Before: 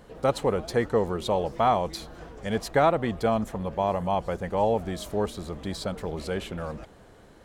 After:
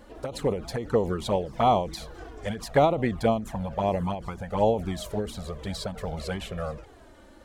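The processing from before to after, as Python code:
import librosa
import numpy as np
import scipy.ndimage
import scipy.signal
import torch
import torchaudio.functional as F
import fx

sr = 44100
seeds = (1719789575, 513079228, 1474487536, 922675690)

y = fx.env_flanger(x, sr, rest_ms=3.7, full_db=-19.5)
y = fx.end_taper(y, sr, db_per_s=120.0)
y = F.gain(torch.from_numpy(y), 4.0).numpy()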